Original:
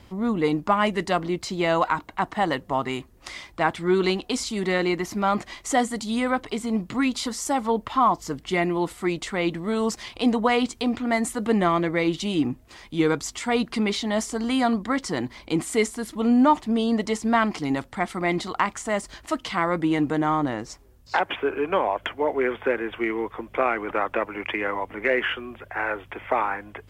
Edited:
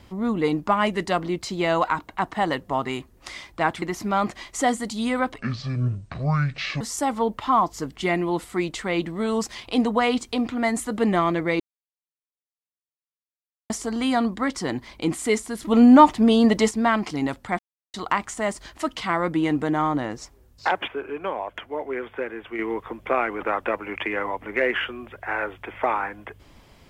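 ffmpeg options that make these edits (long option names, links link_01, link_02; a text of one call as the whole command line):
ffmpeg -i in.wav -filter_complex "[0:a]asplit=12[link_01][link_02][link_03][link_04][link_05][link_06][link_07][link_08][link_09][link_10][link_11][link_12];[link_01]atrim=end=3.822[link_13];[link_02]atrim=start=4.928:end=6.494[link_14];[link_03]atrim=start=6.49:end=7.29,asetpts=PTS-STARTPTS,asetrate=24696,aresample=44100[link_15];[link_04]atrim=start=7.286:end=12.08,asetpts=PTS-STARTPTS,afade=type=out:start_time=4.79:duration=0.004:curve=hsin[link_16];[link_05]atrim=start=12.08:end=14.18,asetpts=PTS-STARTPTS,volume=0[link_17];[link_06]atrim=start=14.18:end=16.112,asetpts=PTS-STARTPTS,afade=type=in:duration=0.004:curve=hsin[link_18];[link_07]atrim=start=16.108:end=17.192,asetpts=PTS-STARTPTS,volume=6dB[link_19];[link_08]atrim=start=17.188:end=18.07,asetpts=PTS-STARTPTS,afade=type=out:start_time=0.878:duration=0.004:curve=hsin[link_20];[link_09]atrim=start=18.07:end=18.42,asetpts=PTS-STARTPTS,volume=0[link_21];[link_10]atrim=start=18.42:end=21.362,asetpts=PTS-STARTPTS,afade=type=in:duration=0.004:curve=hsin[link_22];[link_11]atrim=start=21.358:end=23.072,asetpts=PTS-STARTPTS,volume=-6dB[link_23];[link_12]atrim=start=23.068[link_24];[link_13][link_14]acrossfade=duration=0.004:curve1=hsin:curve2=hsin[link_25];[link_25][link_15]acrossfade=duration=0.004:curve1=hsin:curve2=hsin[link_26];[link_16][link_17][link_18]concat=n=3:v=0:a=1[link_27];[link_26][link_27]acrossfade=duration=0.004:curve1=hsin:curve2=hsin[link_28];[link_28][link_19]acrossfade=duration=0.004:curve1=hsin:curve2=hsin[link_29];[link_20][link_21][link_22]concat=n=3:v=0:a=1[link_30];[link_29][link_30]acrossfade=duration=0.004:curve1=hsin:curve2=hsin[link_31];[link_31][link_23]acrossfade=duration=0.004:curve1=hsin:curve2=hsin[link_32];[link_32][link_24]acrossfade=duration=0.004:curve1=hsin:curve2=hsin" out.wav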